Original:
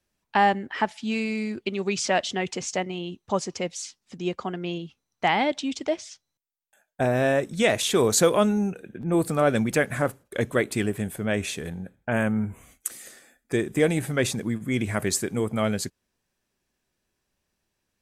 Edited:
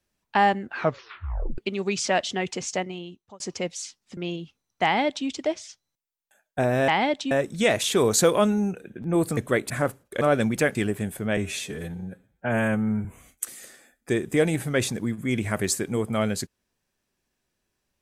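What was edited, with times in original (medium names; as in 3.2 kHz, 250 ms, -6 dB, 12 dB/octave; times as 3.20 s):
0.61 s: tape stop 0.97 s
2.76–3.40 s: fade out
4.17–4.59 s: delete
5.26–5.69 s: copy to 7.30 s
9.36–9.90 s: swap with 10.41–10.74 s
11.36–12.48 s: stretch 1.5×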